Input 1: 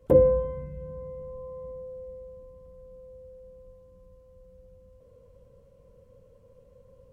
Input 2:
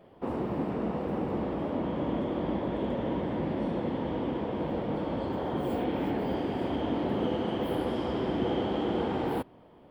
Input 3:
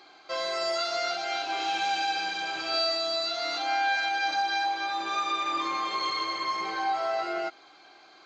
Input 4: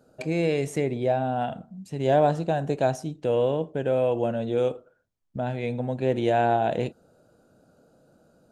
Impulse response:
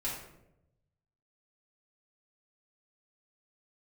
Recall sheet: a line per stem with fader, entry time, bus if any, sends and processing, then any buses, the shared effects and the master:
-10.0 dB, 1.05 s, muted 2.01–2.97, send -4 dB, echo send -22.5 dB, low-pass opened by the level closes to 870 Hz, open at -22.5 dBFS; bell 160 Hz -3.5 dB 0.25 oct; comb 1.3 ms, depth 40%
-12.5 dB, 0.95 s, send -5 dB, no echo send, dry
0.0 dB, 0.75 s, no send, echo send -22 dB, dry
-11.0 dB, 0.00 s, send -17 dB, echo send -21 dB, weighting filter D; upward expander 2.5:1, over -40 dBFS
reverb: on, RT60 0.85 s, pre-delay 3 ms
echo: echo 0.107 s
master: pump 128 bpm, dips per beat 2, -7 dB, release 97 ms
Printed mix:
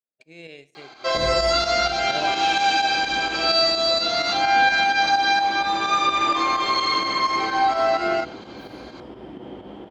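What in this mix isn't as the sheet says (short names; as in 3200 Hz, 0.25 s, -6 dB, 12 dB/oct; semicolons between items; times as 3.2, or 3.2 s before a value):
stem 3 0.0 dB -> +9.0 dB; stem 4: send -17 dB -> -23 dB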